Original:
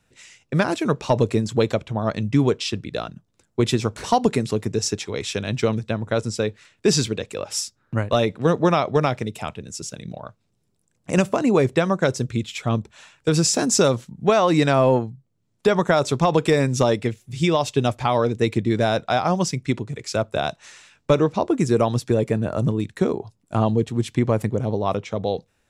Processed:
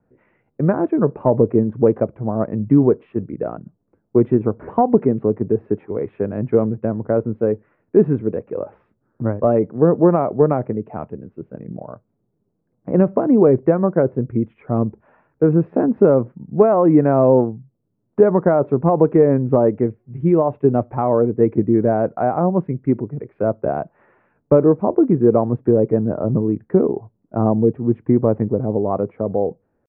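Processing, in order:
tempo change 0.86×
Bessel low-pass filter 1,100 Hz, order 8
parametric band 350 Hz +11.5 dB 3 octaves
level −5 dB

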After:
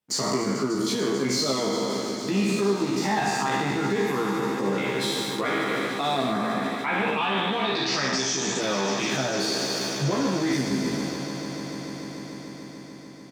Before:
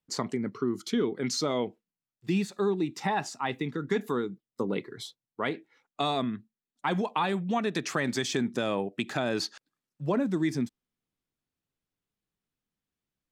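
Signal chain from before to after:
peak hold with a decay on every bin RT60 1.38 s
leveller curve on the samples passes 2
downward compressor, threshold −28 dBFS, peak gain reduction 12 dB
0:06.32–0:08.59: low-pass with resonance 1,500 Hz → 7,300 Hz, resonance Q 4.9
echo that builds up and dies away 147 ms, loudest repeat 5, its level −16.5 dB
brickwall limiter −23 dBFS, peak gain reduction 11 dB
high-pass filter 74 Hz
mains-hum notches 60/120 Hz
double-tracking delay 15 ms −2.5 dB
level +4 dB

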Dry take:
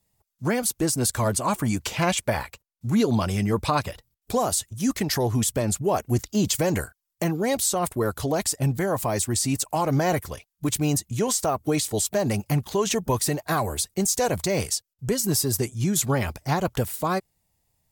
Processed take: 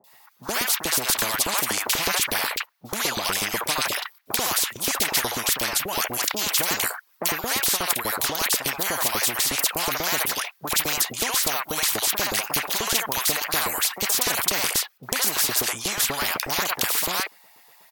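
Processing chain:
octave-band graphic EQ 125/250/500/1,000/2,000/4,000/8,000 Hz +3/+5/−6/+4/+4/+3/−9 dB
auto-filter high-pass saw up 8.2 Hz 420–2,200 Hz
three-band delay without the direct sound lows, highs, mids 40/70 ms, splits 780/2,600 Hz
every bin compressed towards the loudest bin 4 to 1
level +4.5 dB

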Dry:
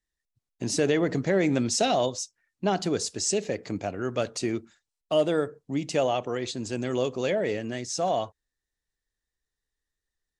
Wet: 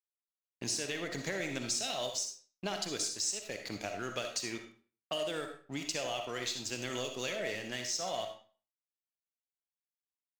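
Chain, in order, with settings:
low-pass that shuts in the quiet parts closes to 1,800 Hz, open at −24.5 dBFS
tilt shelving filter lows −8.5 dB, about 1,400 Hz
downward compressor 6 to 1, threshold −32 dBFS, peak gain reduction 15.5 dB
dead-zone distortion −49.5 dBFS
on a send at −4.5 dB: convolution reverb RT60 0.40 s, pre-delay 20 ms
on the sum: MP3 128 kbit/s 48,000 Hz

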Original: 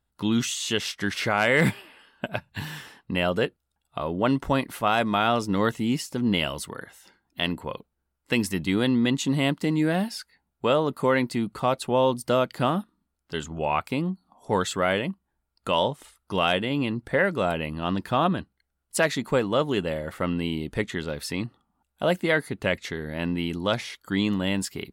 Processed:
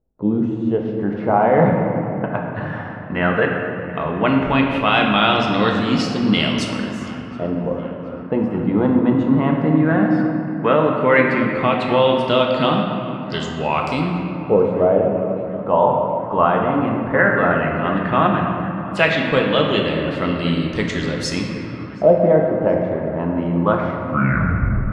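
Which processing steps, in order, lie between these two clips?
turntable brake at the end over 1.01 s
auto-filter low-pass saw up 0.14 Hz 490–6,800 Hz
feedback echo with a band-pass in the loop 724 ms, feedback 81%, band-pass 1,200 Hz, level −20 dB
convolution reverb RT60 3.2 s, pre-delay 5 ms, DRR 0 dB
level +3 dB

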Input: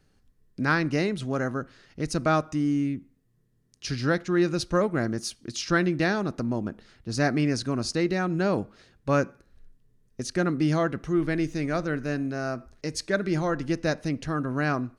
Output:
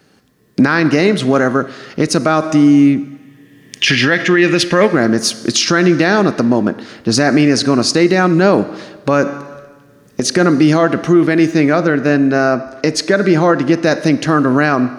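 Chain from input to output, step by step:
camcorder AGC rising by 13 dB per second
0:03.11–0:04.88: gain on a spectral selection 1,600–3,600 Hz +11 dB
0:11.51–0:13.83: high-shelf EQ 5,400 Hz −8 dB
high-pass filter 190 Hz 12 dB per octave
parametric band 9,100 Hz −3.5 dB 1.1 octaves
four-comb reverb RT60 1.4 s, combs from 28 ms, DRR 16 dB
boost into a limiter +18 dB
level −1 dB

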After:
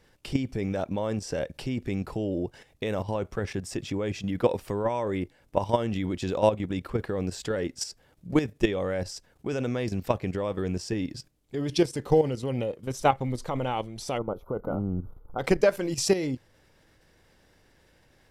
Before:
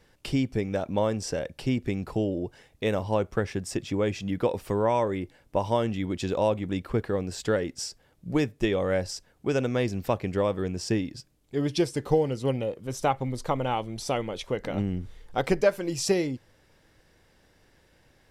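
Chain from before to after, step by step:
output level in coarse steps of 11 dB
gain on a spectral selection 0:14.18–0:15.39, 1,500–11,000 Hz −27 dB
level +4.5 dB

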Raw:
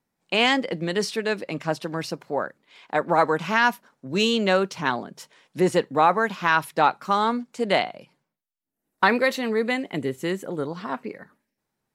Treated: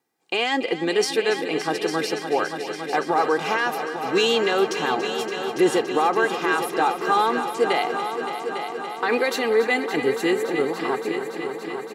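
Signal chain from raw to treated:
high-pass filter 200 Hz 12 dB per octave
brickwall limiter −15.5 dBFS, peak gain reduction 11 dB
comb filter 2.5 ms, depth 61%
on a send: echo machine with several playback heads 284 ms, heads all three, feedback 68%, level −13 dB
on the sum: level +3 dB

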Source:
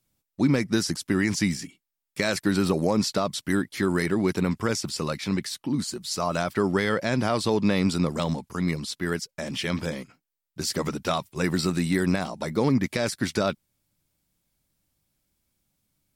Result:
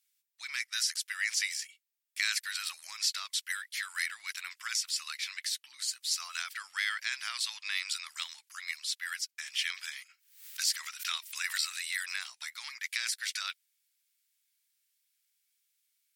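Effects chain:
inverse Chebyshev high-pass filter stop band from 510 Hz, stop band 60 dB
0:09.90–0:12.33: background raised ahead of every attack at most 100 dB per second

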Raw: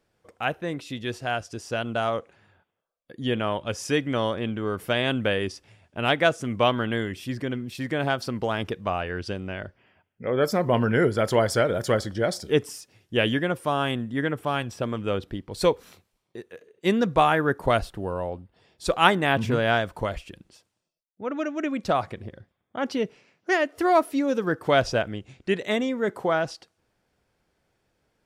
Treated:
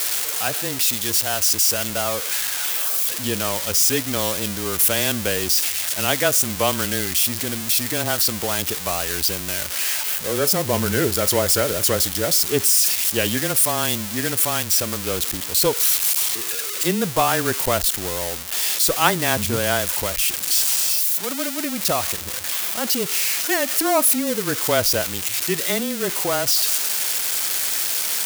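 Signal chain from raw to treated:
spike at every zero crossing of −11 dBFS
frequency shifter −19 Hz

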